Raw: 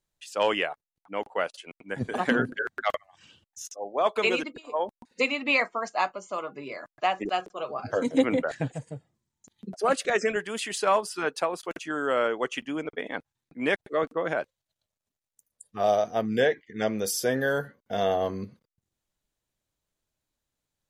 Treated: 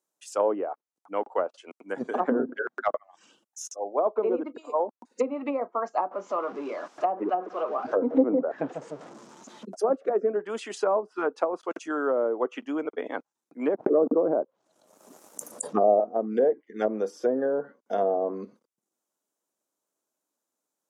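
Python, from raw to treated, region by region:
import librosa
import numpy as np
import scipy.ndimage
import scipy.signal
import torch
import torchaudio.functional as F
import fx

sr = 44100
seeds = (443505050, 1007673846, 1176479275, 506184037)

y = fx.chain(x, sr, fx.zero_step(step_db=-37.0),
    fx.air_absorb(metres=140.0), at=(6.11, 9.65))
y = fx.chain(y, sr, fx.env_lowpass_down(base_hz=1000.0, full_db=-21.5),
    fx.tilt_shelf(db=5.5, hz=1400.0),
    fx.pre_swell(db_per_s=41.0), at=(13.74, 16.0))
y = scipy.signal.sosfilt(scipy.signal.butter(4, 250.0, 'highpass', fs=sr, output='sos'), y)
y = fx.env_lowpass_down(y, sr, base_hz=620.0, full_db=-22.0)
y = fx.band_shelf(y, sr, hz=2800.0, db=-9.5, octaves=1.7)
y = y * librosa.db_to_amplitude(3.0)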